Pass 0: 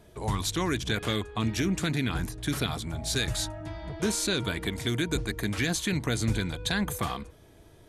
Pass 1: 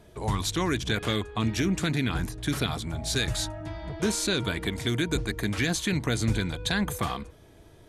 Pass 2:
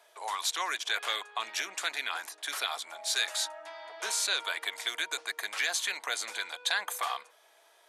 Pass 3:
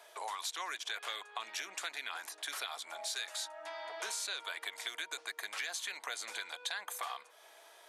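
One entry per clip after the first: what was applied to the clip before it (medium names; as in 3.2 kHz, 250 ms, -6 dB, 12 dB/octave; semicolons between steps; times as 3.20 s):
treble shelf 10 kHz -4.5 dB; trim +1.5 dB
high-pass 690 Hz 24 dB/octave
compression 3:1, threshold -45 dBFS, peak gain reduction 15 dB; trim +4 dB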